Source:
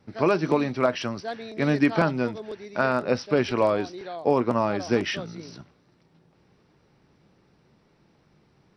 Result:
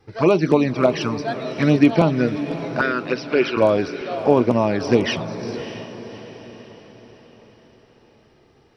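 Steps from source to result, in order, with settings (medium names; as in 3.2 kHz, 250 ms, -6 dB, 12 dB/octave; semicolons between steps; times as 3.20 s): 2.81–3.57 s: cabinet simulation 360–5100 Hz, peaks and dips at 380 Hz +5 dB, 560 Hz -5 dB, 800 Hz -8 dB, 1.2 kHz -4 dB, 2.5 kHz +6 dB; touch-sensitive flanger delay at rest 2.5 ms, full sweep at -17.5 dBFS; echo that smears into a reverb 611 ms, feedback 47%, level -11.5 dB; trim +7.5 dB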